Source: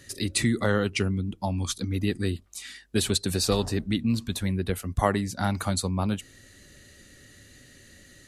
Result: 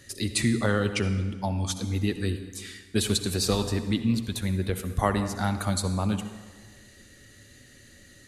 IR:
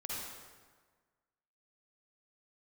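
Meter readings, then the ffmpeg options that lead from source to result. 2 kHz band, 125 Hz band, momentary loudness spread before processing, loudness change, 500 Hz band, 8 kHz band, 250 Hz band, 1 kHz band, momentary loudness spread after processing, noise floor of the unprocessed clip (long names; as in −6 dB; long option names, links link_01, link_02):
−0.5 dB, +0.5 dB, 6 LU, 0.0 dB, −1.0 dB, −0.5 dB, 0.0 dB, −0.5 dB, 6 LU, −53 dBFS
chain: -filter_complex "[0:a]asplit=2[link_01][link_02];[1:a]atrim=start_sample=2205,adelay=9[link_03];[link_02][link_03]afir=irnorm=-1:irlink=0,volume=-9.5dB[link_04];[link_01][link_04]amix=inputs=2:normalize=0,volume=-1dB"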